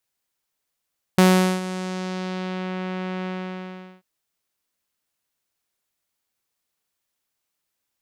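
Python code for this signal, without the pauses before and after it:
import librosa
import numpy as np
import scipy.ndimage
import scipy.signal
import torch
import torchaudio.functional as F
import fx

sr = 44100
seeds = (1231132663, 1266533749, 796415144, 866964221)

y = fx.sub_voice(sr, note=54, wave='saw', cutoff_hz=2800.0, q=1.1, env_oct=2.5, env_s=1.54, attack_ms=2.4, decay_s=0.42, sustain_db=-16.0, release_s=0.76, note_s=2.08, slope=12)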